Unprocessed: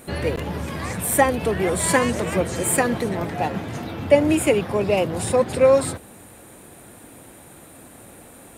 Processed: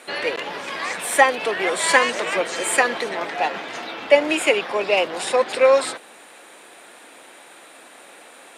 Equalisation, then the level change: band-pass 360–3700 Hz; tilt EQ +3.5 dB/octave; +4.0 dB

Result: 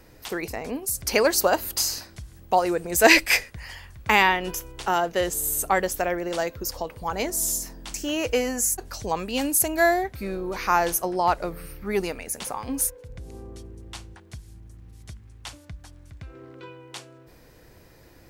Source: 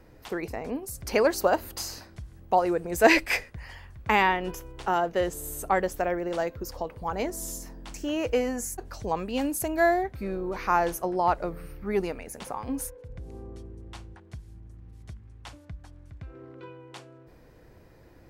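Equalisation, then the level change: treble shelf 2.6 kHz +11.5 dB; +1.0 dB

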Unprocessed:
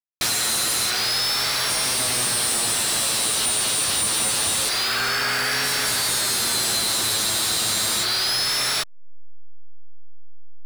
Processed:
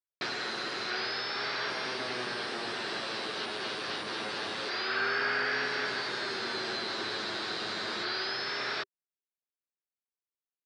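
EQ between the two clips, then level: distance through air 280 m; cabinet simulation 190–8500 Hz, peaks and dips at 390 Hz +8 dB, 1.6 kHz +5 dB, 4.8 kHz +5 dB, 8.5 kHz +4 dB; -6.5 dB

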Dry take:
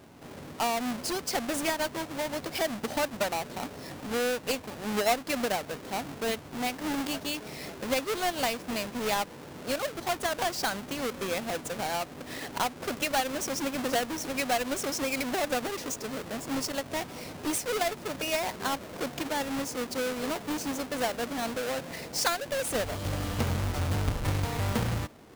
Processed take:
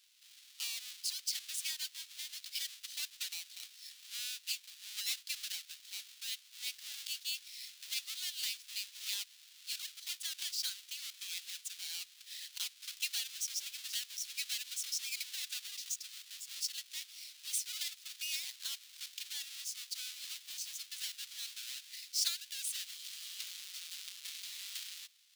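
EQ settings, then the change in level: ladder high-pass 2.8 kHz, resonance 30%; +2.5 dB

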